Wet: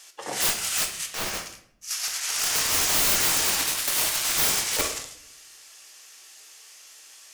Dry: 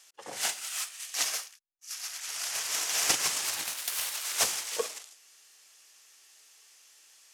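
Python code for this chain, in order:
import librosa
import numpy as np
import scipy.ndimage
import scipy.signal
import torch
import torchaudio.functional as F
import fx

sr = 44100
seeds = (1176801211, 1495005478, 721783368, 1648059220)

y = (np.mod(10.0 ** (25.5 / 20.0) * x + 1.0, 2.0) - 1.0) / 10.0 ** (25.5 / 20.0)
y = fx.high_shelf(y, sr, hz=3000.0, db=-10.5, at=(1.06, 1.46))
y = fx.room_shoebox(y, sr, seeds[0], volume_m3=130.0, walls='mixed', distance_m=0.51)
y = y * librosa.db_to_amplitude(8.5)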